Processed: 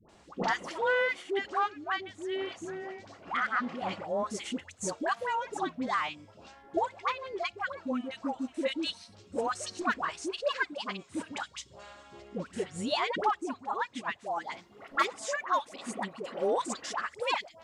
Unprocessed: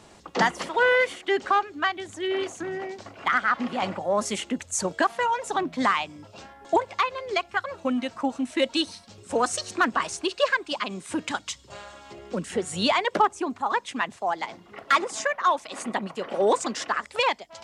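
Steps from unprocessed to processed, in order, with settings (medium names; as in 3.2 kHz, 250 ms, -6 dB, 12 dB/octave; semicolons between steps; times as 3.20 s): treble shelf 9.7 kHz -8.5 dB, from 14.18 s +2.5 dB; phase dispersion highs, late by 92 ms, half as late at 750 Hz; trim -7 dB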